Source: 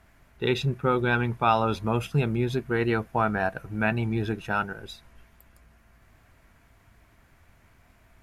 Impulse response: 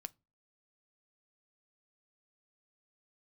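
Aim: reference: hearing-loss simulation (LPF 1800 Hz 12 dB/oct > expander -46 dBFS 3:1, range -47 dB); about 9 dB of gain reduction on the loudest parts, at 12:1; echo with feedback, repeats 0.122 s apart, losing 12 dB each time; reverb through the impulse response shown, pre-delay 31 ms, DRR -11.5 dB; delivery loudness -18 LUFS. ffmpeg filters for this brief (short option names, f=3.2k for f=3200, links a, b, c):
-filter_complex "[0:a]acompressor=threshold=-27dB:ratio=12,aecho=1:1:122|244|366:0.251|0.0628|0.0157,asplit=2[a][b];[1:a]atrim=start_sample=2205,adelay=31[c];[b][c]afir=irnorm=-1:irlink=0,volume=16dB[d];[a][d]amix=inputs=2:normalize=0,lowpass=1.8k,agate=range=-47dB:threshold=-46dB:ratio=3,volume=3.5dB"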